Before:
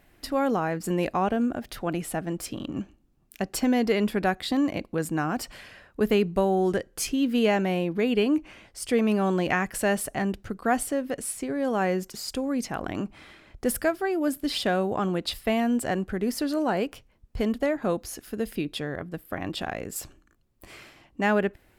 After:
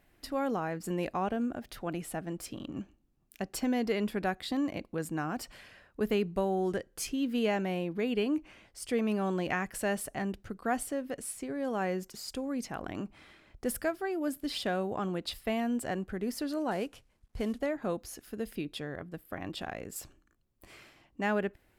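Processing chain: 16.71–17.60 s: CVSD coder 64 kbps; trim -7 dB

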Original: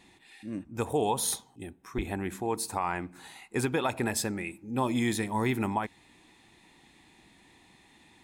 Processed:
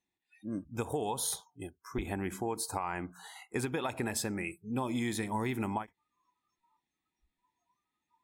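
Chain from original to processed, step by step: spectral noise reduction 30 dB; compression, threshold -30 dBFS, peak gain reduction 7.5 dB; endings held to a fixed fall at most 370 dB/s

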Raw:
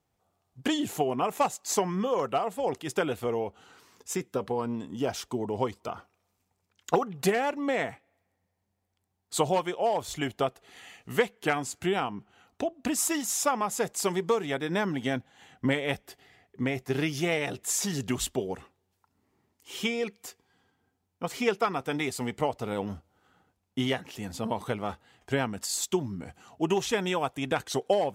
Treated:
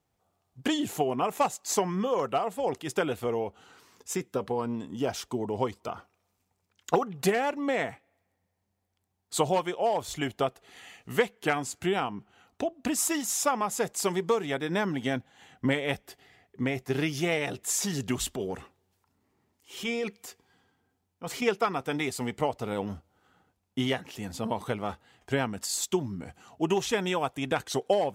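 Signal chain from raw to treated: 18.20–21.42 s: transient shaper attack -7 dB, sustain +3 dB

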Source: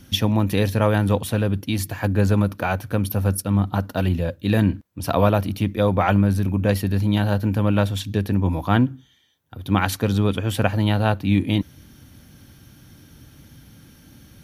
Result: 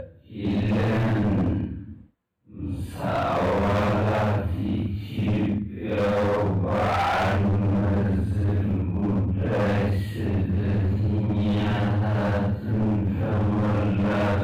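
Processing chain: Paulstretch 4.1×, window 0.10 s, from 4.33 s; boxcar filter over 8 samples; overload inside the chain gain 20 dB

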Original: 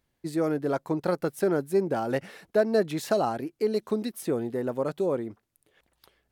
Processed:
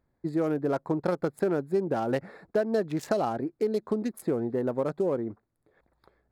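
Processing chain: local Wiener filter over 15 samples; compression 3:1, threshold -27 dBFS, peak gain reduction 8 dB; trim +3 dB

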